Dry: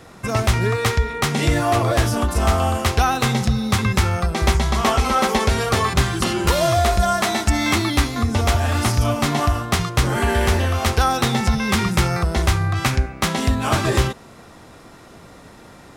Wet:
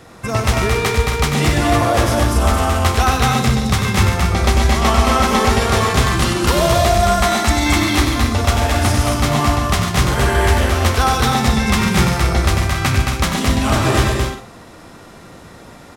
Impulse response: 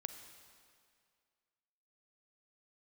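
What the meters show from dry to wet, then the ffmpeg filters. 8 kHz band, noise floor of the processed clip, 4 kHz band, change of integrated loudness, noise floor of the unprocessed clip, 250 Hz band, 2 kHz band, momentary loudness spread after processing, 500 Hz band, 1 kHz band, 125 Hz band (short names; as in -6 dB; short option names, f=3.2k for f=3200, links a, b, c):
+4.0 dB, -40 dBFS, +4.0 dB, +3.5 dB, -44 dBFS, +4.0 dB, +4.0 dB, 3 LU, +3.5 dB, +4.0 dB, +3.5 dB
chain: -filter_complex "[0:a]aecho=1:1:96.21|142.9|221.6|271.1:0.447|0.316|0.631|0.316[a];[1:a]atrim=start_sample=2205,afade=t=out:st=0.17:d=0.01,atrim=end_sample=7938[b];[a][b]afir=irnorm=-1:irlink=0,volume=4.5dB"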